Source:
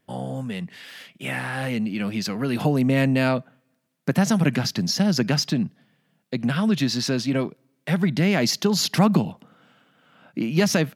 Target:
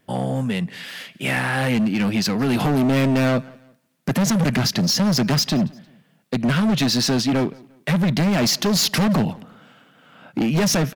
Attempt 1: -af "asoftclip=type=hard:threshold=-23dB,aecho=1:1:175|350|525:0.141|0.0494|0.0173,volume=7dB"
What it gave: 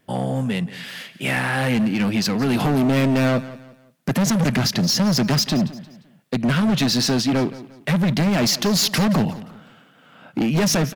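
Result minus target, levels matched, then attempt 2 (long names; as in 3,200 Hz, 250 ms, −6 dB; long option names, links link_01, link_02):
echo-to-direct +7.5 dB
-af "asoftclip=type=hard:threshold=-23dB,aecho=1:1:175|350:0.0596|0.0208,volume=7dB"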